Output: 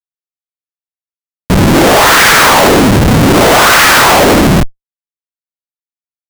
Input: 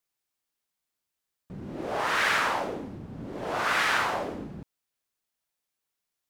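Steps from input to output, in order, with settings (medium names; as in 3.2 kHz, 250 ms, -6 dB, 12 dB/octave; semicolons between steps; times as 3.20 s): in parallel at -2 dB: compressor with a negative ratio -35 dBFS, ratio -1; on the sum: Schmitt trigger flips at -38 dBFS; loudness maximiser +36 dB; trim -4 dB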